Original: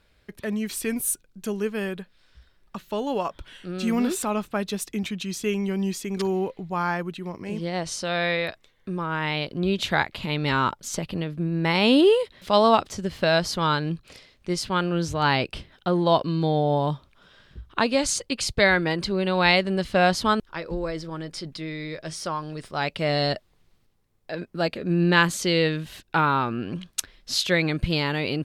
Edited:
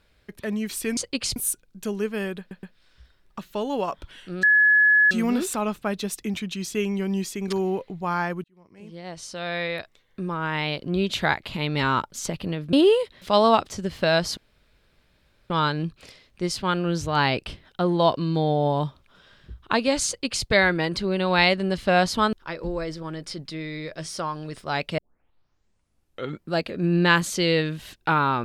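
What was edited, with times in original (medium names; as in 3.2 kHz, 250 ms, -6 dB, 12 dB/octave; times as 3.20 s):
2.00 s: stutter 0.12 s, 3 plays
3.80 s: add tone 1.7 kHz -13.5 dBFS 0.68 s
7.13–8.92 s: fade in
11.42–11.93 s: delete
13.57 s: insert room tone 1.13 s
18.14–18.53 s: copy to 0.97 s
23.05 s: tape start 1.56 s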